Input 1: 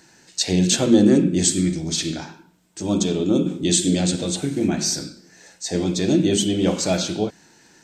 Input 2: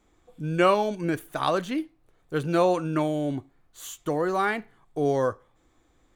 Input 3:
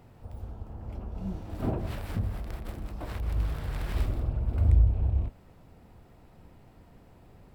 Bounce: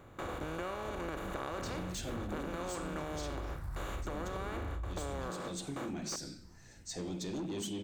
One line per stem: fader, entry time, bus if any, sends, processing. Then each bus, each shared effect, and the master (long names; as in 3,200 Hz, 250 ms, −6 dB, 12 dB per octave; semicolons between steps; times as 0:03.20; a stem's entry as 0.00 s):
−13.0 dB, 1.25 s, bus A, no send, soft clipping −17.5 dBFS, distortion −10 dB
−15.0 dB, 0.00 s, no bus, no send, compressor on every frequency bin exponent 0.2; noise gate with hold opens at −12 dBFS
−4.0 dB, 0.00 s, bus A, no send, all-pass phaser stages 4, 2.1 Hz, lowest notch 460–1,000 Hz
bus A: 0.0 dB, brickwall limiter −25.5 dBFS, peak gain reduction 11 dB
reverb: not used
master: downward compressor, threshold −36 dBFS, peak gain reduction 10.5 dB